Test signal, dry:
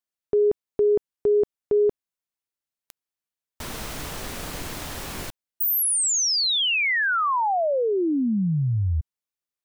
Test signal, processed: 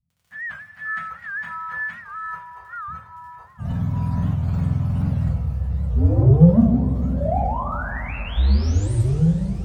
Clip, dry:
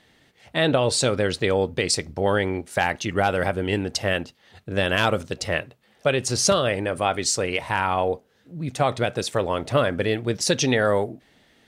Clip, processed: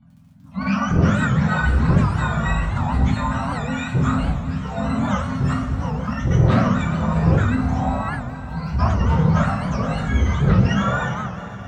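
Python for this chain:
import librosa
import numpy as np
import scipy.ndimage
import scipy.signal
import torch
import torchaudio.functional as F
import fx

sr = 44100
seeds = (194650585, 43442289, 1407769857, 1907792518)

y = fx.octave_mirror(x, sr, pivot_hz=850.0)
y = fx.tilt_eq(y, sr, slope=-4.5)
y = fx.transient(y, sr, attack_db=-2, sustain_db=10)
y = scipy.signal.sosfilt(scipy.signal.ellip(4, 1.0, 40, [260.0, 570.0], 'bandstop', fs=sr, output='sos'), y)
y = 10.0 ** (-7.0 / 20.0) * np.tanh(y / 10.0 ** (-7.0 / 20.0))
y = fx.dmg_crackle(y, sr, seeds[0], per_s=25.0, level_db=-41.0)
y = fx.echo_thinned(y, sr, ms=475, feedback_pct=76, hz=420.0, wet_db=-21.5)
y = fx.echo_pitch(y, sr, ms=419, semitones=-5, count=2, db_per_echo=-6.0)
y = fx.rev_double_slope(y, sr, seeds[1], early_s=0.35, late_s=4.1, knee_db=-18, drr_db=-4.0)
y = fx.record_warp(y, sr, rpm=78.0, depth_cents=160.0)
y = y * librosa.db_to_amplitude(-8.0)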